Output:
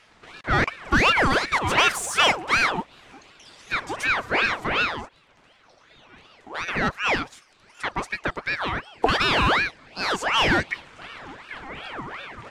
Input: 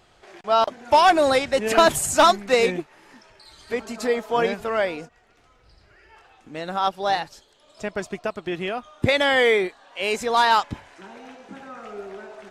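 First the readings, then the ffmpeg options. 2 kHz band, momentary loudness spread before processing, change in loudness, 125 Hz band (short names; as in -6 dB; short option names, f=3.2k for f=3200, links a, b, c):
+4.0 dB, 20 LU, -1.5 dB, +4.5 dB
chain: -filter_complex "[0:a]equalizer=f=125:t=o:w=1:g=12,equalizer=f=250:t=o:w=1:g=5,equalizer=f=8k:t=o:w=1:g=5,asplit=2[a][b];[b]highpass=f=720:p=1,volume=11dB,asoftclip=type=tanh:threshold=-11.5dB[c];[a][c]amix=inputs=2:normalize=0,lowpass=f=2.5k:p=1,volume=-6dB,aeval=exprs='val(0)*sin(2*PI*1300*n/s+1300*0.6/2.7*sin(2*PI*2.7*n/s))':c=same"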